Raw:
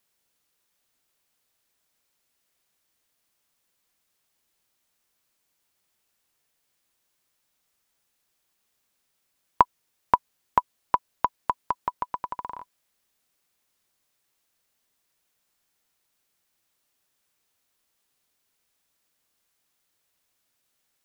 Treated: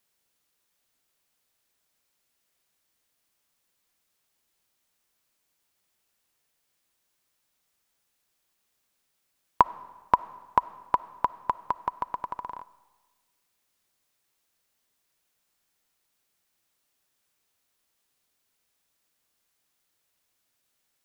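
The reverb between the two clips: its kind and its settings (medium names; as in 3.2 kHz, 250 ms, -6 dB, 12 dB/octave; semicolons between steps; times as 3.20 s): algorithmic reverb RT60 1.3 s, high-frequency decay 0.95×, pre-delay 15 ms, DRR 17.5 dB; trim -1 dB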